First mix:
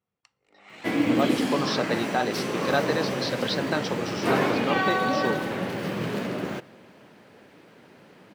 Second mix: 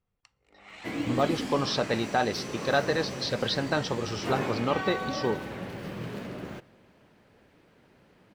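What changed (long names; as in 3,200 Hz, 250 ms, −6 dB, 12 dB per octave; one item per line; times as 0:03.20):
second sound −9.0 dB
master: remove high-pass filter 150 Hz 12 dB per octave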